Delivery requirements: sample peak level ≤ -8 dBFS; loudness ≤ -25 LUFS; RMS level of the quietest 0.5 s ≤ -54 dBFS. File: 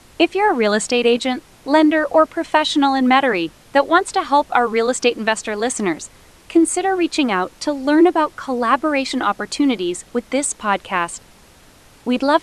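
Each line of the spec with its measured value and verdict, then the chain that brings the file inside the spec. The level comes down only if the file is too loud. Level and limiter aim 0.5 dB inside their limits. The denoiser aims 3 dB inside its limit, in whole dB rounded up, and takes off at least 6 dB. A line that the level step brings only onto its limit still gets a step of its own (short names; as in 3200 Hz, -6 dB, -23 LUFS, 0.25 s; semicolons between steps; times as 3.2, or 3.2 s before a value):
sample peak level -2.5 dBFS: fail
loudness -18.0 LUFS: fail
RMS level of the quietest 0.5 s -48 dBFS: fail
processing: gain -7.5 dB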